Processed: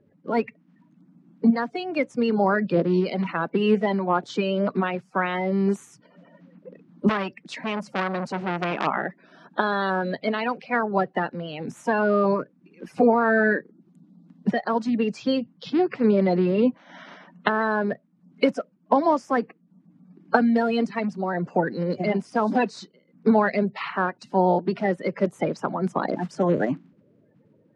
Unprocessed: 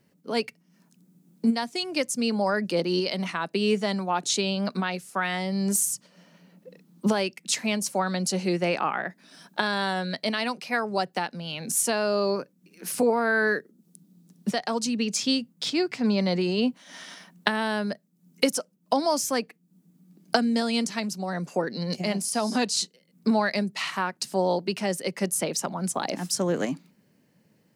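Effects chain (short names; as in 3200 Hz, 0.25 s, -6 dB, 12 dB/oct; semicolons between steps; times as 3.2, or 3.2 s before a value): bin magnitudes rounded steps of 30 dB; LPF 1700 Hz 12 dB/oct; 7.09–8.87 core saturation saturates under 1800 Hz; gain +5 dB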